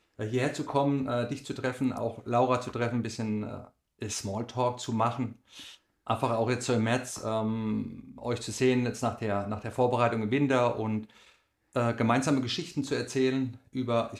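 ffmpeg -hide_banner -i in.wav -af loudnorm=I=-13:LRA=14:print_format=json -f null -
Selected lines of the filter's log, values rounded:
"input_i" : "-29.7",
"input_tp" : "-11.6",
"input_lra" : "2.5",
"input_thresh" : "-40.2",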